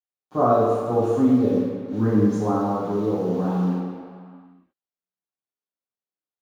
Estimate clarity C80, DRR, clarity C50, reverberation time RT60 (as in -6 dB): 1.0 dB, -12.5 dB, -1.0 dB, not exponential